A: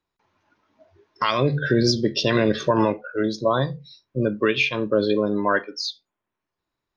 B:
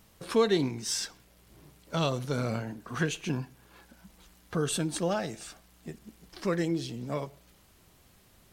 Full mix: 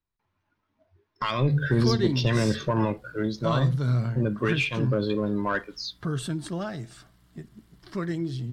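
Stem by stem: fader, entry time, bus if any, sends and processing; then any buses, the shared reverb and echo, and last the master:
-6.5 dB, 0.00 s, no send, bell 470 Hz -5 dB 2.2 oct; sample leveller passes 1; low shelf 140 Hz +11.5 dB
0.0 dB, 1.50 s, no send, thirty-one-band EQ 125 Hz +12 dB, 500 Hz -10 dB, 800 Hz -7 dB, 2500 Hz -8 dB, 6300 Hz -5 dB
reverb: off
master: high shelf 6300 Hz -10.5 dB

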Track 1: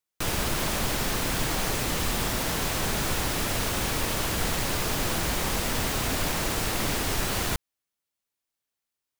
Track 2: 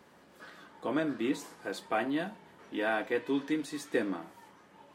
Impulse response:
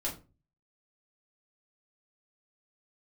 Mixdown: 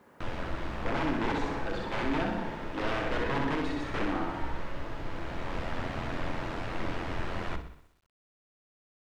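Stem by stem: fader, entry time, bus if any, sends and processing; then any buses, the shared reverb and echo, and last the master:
-4.5 dB, 0.00 s, send -10.5 dB, echo send -10 dB, notches 50/100/150/200/250/300/350/400/450 Hz; AM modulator 87 Hz, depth 50%; auto duck -12 dB, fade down 1.75 s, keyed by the second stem
0.0 dB, 0.00 s, no send, echo send -3 dB, wrapped overs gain 26 dB; sustainer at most 38 dB/s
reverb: on, RT60 0.30 s, pre-delay 3 ms
echo: feedback echo 63 ms, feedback 57%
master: LPF 2100 Hz 12 dB/oct; requantised 12-bit, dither none

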